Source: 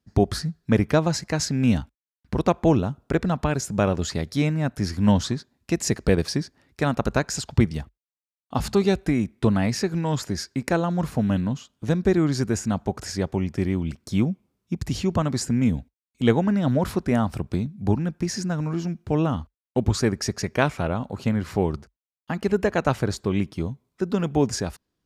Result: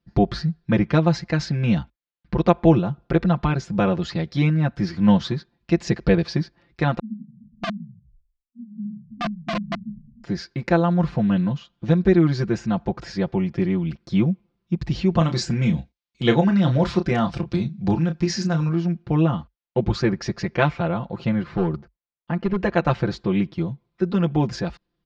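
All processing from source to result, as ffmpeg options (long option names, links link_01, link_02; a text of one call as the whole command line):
ffmpeg -i in.wav -filter_complex "[0:a]asettb=1/sr,asplit=3[link_01][link_02][link_03];[link_01]atrim=end=6.994[link_04];[link_02]atrim=start=6.99:end=10.24,asetpts=PTS-STARTPTS,afade=type=in:duration=0.004:curve=qsin,afade=type=out:start_time=3.246:duration=0.004:curve=qsin,asuperpass=centerf=230:order=20:qfactor=4.4,asplit=7[link_05][link_06][link_07][link_08][link_09][link_10][link_11];[link_06]adelay=81,afreqshift=-33,volume=-18.5dB[link_12];[link_07]adelay=162,afreqshift=-66,volume=-22.5dB[link_13];[link_08]adelay=243,afreqshift=-99,volume=-26.5dB[link_14];[link_09]adelay=324,afreqshift=-132,volume=-30.5dB[link_15];[link_10]adelay=405,afreqshift=-165,volume=-34.6dB[link_16];[link_11]adelay=486,afreqshift=-198,volume=-38.6dB[link_17];[link_05][link_12][link_13][link_14][link_15][link_16][link_17]amix=inputs=7:normalize=0,atrim=end_sample=143325,aeval=exprs='(mod(12.6*val(0)+1,2)-1)/12.6':channel_layout=same[link_18];[link_03]atrim=start=10.236[link_19];[link_04][link_18]acrossfade=duration=0.004:curve1=hsin:curve2=qsin[link_20];[link_20][link_19]acrossfade=duration=0.004:curve1=qsin:curve2=hsin,asettb=1/sr,asplit=3[link_21][link_22][link_23];[link_21]atrim=end=15.164[link_24];[link_22]atrim=start=15.16:end=18.69,asetpts=PTS-STARTPTS,afade=type=in:duration=0.004:curve=qsin,afade=type=out:start_time=3.526:duration=0.004:curve=qsin,equalizer=frequency=7300:width=0.51:gain=10.5,asplit=2[link_25][link_26];[link_26]adelay=31,volume=-9dB[link_27];[link_25][link_27]amix=inputs=2:normalize=0,atrim=end_sample=155673[link_28];[link_23]atrim=start=18.686[link_29];[link_24][link_28]acrossfade=duration=0.004:curve1=hsin:curve2=qsin[link_30];[link_30][link_29]acrossfade=duration=0.004:curve1=qsin:curve2=hsin,asettb=1/sr,asplit=3[link_31][link_32][link_33];[link_31]atrim=end=21.434[link_34];[link_32]atrim=start=21.43:end=22.57,asetpts=PTS-STARTPTS,afade=type=in:duration=0.004:curve=qsin,afade=type=out:start_time=1.136:duration=0.004:curve=qsin,highshelf=frequency=2600:gain=-9.5,volume=16dB,asoftclip=hard,volume=-16dB[link_35];[link_33]atrim=start=22.566[link_36];[link_34][link_35]acrossfade=duration=0.004:curve1=hsin:curve2=qsin[link_37];[link_37][link_36]acrossfade=duration=0.004:curve1=qsin:curve2=hsin,lowpass=frequency=4500:width=0.5412,lowpass=frequency=4500:width=1.3066,lowshelf=frequency=75:gain=5.5,aecho=1:1:5.8:0.88,volume=-1dB" out.wav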